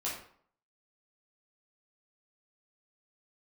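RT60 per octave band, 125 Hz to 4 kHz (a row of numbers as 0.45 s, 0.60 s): 0.55 s, 0.55 s, 0.55 s, 0.60 s, 0.45 s, 0.40 s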